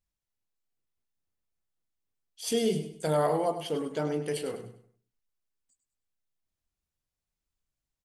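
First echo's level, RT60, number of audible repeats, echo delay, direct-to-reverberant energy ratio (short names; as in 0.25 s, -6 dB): -11.0 dB, none, 3, 0.1 s, none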